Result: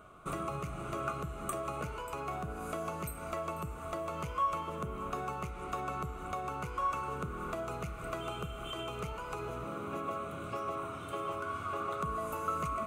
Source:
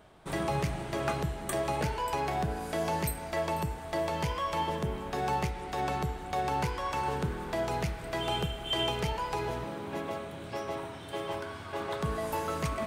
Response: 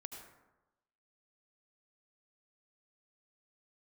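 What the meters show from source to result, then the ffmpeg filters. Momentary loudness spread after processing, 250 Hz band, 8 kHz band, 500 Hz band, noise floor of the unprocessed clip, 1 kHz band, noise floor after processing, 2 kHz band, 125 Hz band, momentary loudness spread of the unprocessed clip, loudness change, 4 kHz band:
6 LU, −6.0 dB, −6.5 dB, −6.0 dB, −43 dBFS, −3.5 dB, −44 dBFS, −6.0 dB, −7.0 dB, 7 LU, −5.0 dB, −12.0 dB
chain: -af "acompressor=threshold=-36dB:ratio=5,superequalizer=9b=0.562:10b=3.16:11b=0.398:13b=0.501:14b=0.355"

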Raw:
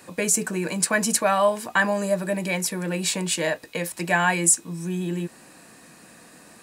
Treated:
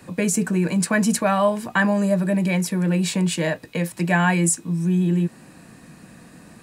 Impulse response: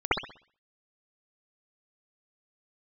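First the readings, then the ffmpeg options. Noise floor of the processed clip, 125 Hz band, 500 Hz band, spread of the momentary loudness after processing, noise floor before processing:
−48 dBFS, +9.0 dB, +1.0 dB, 6 LU, −50 dBFS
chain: -filter_complex "[0:a]bass=frequency=250:gain=13,treble=frequency=4000:gain=-4,acrossover=split=100[link_01][link_02];[link_01]acompressor=threshold=-55dB:ratio=6[link_03];[link_03][link_02]amix=inputs=2:normalize=0"

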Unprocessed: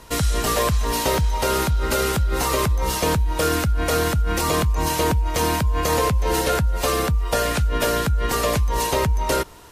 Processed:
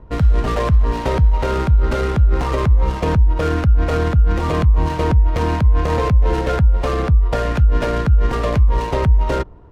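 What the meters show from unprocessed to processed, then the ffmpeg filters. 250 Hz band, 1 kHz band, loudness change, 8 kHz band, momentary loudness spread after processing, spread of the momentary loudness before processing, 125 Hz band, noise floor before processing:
+3.0 dB, −0.5 dB, +4.0 dB, −15.5 dB, 2 LU, 1 LU, +7.5 dB, −25 dBFS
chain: -af "adynamicsmooth=sensitivity=1.5:basefreq=770,lowshelf=frequency=180:gain=9"

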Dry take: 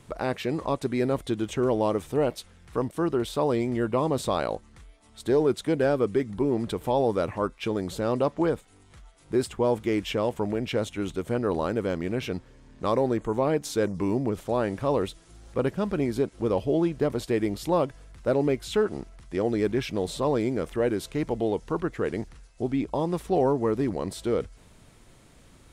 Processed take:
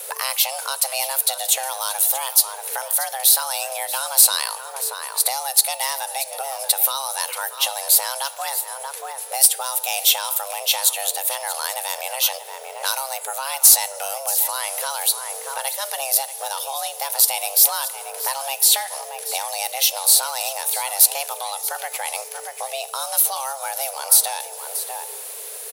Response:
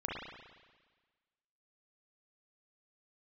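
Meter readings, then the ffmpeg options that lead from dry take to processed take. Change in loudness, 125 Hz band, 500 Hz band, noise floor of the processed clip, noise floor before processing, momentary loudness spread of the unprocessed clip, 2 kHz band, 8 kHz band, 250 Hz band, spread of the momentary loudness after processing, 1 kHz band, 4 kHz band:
+8.0 dB, below −35 dB, −8.5 dB, −35 dBFS, −55 dBFS, 7 LU, +8.5 dB, +28.0 dB, below −35 dB, 12 LU, +6.0 dB, +17.5 dB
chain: -filter_complex "[0:a]afreqshift=400,aecho=1:1:632:0.178,asplit=2[link_01][link_02];[1:a]atrim=start_sample=2205[link_03];[link_02][link_03]afir=irnorm=-1:irlink=0,volume=-20dB[link_04];[link_01][link_04]amix=inputs=2:normalize=0,aexciter=amount=1.5:drive=9.8:freq=10000,acrossover=split=140|3000[link_05][link_06][link_07];[link_06]acompressor=threshold=-38dB:ratio=5[link_08];[link_05][link_08][link_07]amix=inputs=3:normalize=0,crystalizer=i=7:c=0,acontrast=60,bandreject=frequency=295.9:width_type=h:width=4,bandreject=frequency=591.8:width_type=h:width=4,bandreject=frequency=887.7:width_type=h:width=4,bandreject=frequency=1183.6:width_type=h:width=4,bandreject=frequency=1479.5:width_type=h:width=4,bandreject=frequency=1775.4:width_type=h:width=4,bandreject=frequency=2071.3:width_type=h:width=4,bandreject=frequency=2367.2:width_type=h:width=4,bandreject=frequency=2663.1:width_type=h:width=4,bandreject=frequency=2959:width_type=h:width=4,bandreject=frequency=3254.9:width_type=h:width=4,bandreject=frequency=3550.8:width_type=h:width=4,bandreject=frequency=3846.7:width_type=h:width=4,bandreject=frequency=4142.6:width_type=h:width=4,bandreject=frequency=4438.5:width_type=h:width=4,bandreject=frequency=4734.4:width_type=h:width=4,bandreject=frequency=5030.3:width_type=h:width=4,bandreject=frequency=5326.2:width_type=h:width=4,bandreject=frequency=5622.1:width_type=h:width=4,bandreject=frequency=5918:width_type=h:width=4,bandreject=frequency=6213.9:width_type=h:width=4,bandreject=frequency=6509.8:width_type=h:width=4,bandreject=frequency=6805.7:width_type=h:width=4,bandreject=frequency=7101.6:width_type=h:width=4,bandreject=frequency=7397.5:width_type=h:width=4,bandreject=frequency=7693.4:width_type=h:width=4,bandreject=frequency=7989.3:width_type=h:width=4,bandreject=frequency=8285.2:width_type=h:width=4,bandreject=frequency=8581.1:width_type=h:width=4,bandreject=frequency=8877:width_type=h:width=4,bandreject=frequency=9172.9:width_type=h:width=4,bandreject=frequency=9468.8:width_type=h:width=4,bandreject=frequency=9764.7:width_type=h:width=4,bandreject=frequency=10060.6:width_type=h:width=4,bandreject=frequency=10356.5:width_type=h:width=4,bandreject=frequency=10652.4:width_type=h:width=4,bandreject=frequency=10948.3:width_type=h:width=4,bandreject=frequency=11244.2:width_type=h:width=4"

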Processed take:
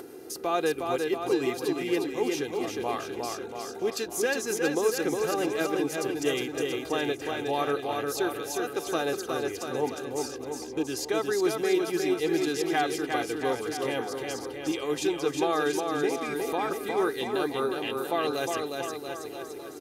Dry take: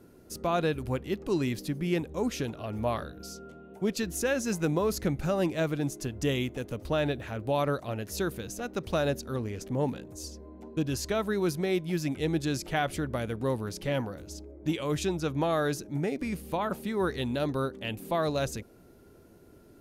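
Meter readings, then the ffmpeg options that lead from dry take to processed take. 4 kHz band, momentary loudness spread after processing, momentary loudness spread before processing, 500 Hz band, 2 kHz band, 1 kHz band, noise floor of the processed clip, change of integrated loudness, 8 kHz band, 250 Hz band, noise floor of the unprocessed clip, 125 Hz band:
+4.0 dB, 7 LU, 8 LU, +3.5 dB, +4.0 dB, +4.0 dB, −40 dBFS, +2.0 dB, +4.0 dB, +0.5 dB, −55 dBFS, −11.0 dB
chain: -af "highpass=260,aecho=1:1:2.5:0.66,acompressor=mode=upward:threshold=-33dB:ratio=2.5,aecho=1:1:360|684|975.6|1238|1474:0.631|0.398|0.251|0.158|0.1"

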